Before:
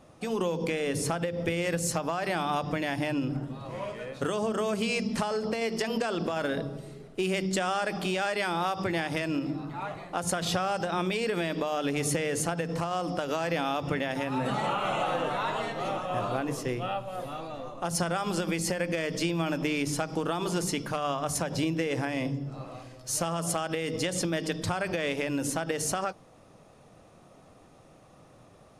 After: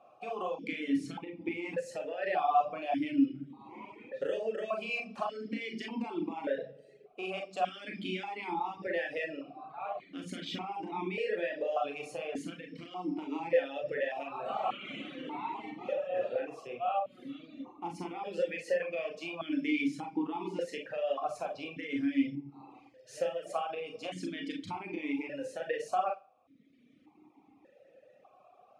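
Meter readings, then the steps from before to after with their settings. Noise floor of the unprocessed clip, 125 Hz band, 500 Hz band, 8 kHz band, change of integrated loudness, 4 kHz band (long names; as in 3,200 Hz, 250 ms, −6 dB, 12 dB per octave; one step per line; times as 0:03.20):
−55 dBFS, −17.0 dB, −4.5 dB, −22.0 dB, −5.5 dB, −10.0 dB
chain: four-comb reverb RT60 0.36 s, combs from 29 ms, DRR 0.5 dB
reverb reduction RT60 1.2 s
formant filter that steps through the vowels 1.7 Hz
level +5 dB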